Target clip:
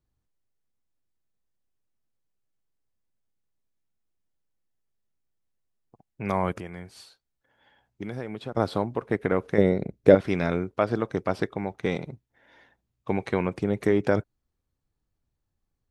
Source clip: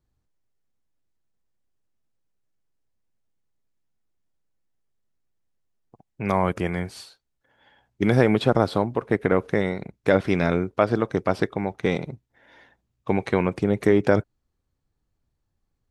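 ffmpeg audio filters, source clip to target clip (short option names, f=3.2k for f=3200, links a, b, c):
-filter_complex "[0:a]asettb=1/sr,asplit=3[a][b][c];[a]atrim=end=6.584[d];[b]atrim=start=6.58:end=8.57,asetpts=PTS-STARTPTS,afade=t=in:d=0.004:c=qsin,afade=t=out:st=1.986:d=0.004:c=qsin,acompressor=threshold=-37dB:ratio=2[e];[c]atrim=start=8.566[f];[d][e]acrossfade=d=0.004:c1=hsin:c2=qsin[g];[g][f]acrossfade=d=0.004:c1=qsin:c2=hsin,asettb=1/sr,asplit=3[h][i][j];[h]atrim=end=9.584[k];[i]atrim=start=9.58:end=10.15,asetpts=PTS-STARTPTS,afade=t=in:d=0.004:c=qsin,afade=t=out:st=0.566:d=0.004:c=qsin,lowshelf=f=710:t=q:w=1.5:g=8[l];[j]atrim=start=10.146[m];[k][l]acrossfade=d=0.004:c1=hsin:c2=qsin[n];[n][m]acrossfade=d=0.004:c1=qsin:c2=hsin,volume=-4dB"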